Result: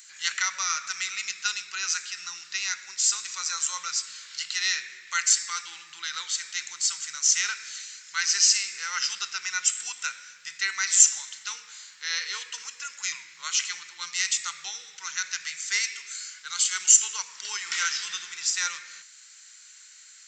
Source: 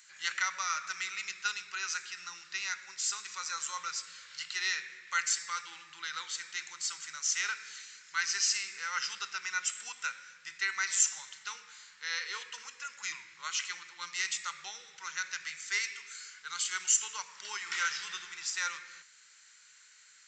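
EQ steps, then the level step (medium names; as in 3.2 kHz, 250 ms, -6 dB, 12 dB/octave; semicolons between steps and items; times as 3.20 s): treble shelf 2.8 kHz +12 dB; 0.0 dB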